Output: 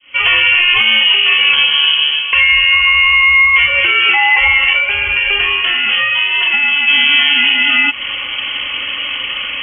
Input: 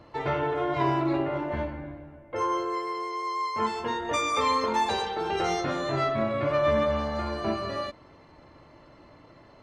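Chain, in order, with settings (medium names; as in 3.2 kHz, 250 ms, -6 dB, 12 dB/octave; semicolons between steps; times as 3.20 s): fade-in on the opening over 0.99 s; compression 20:1, threshold -38 dBFS, peak gain reduction 19 dB; 4.73–6.88 s: flange 1 Hz, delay 8.4 ms, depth 8.5 ms, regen +86%; frequency inversion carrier 3.2 kHz; loudness maximiser +33 dB; trim -1 dB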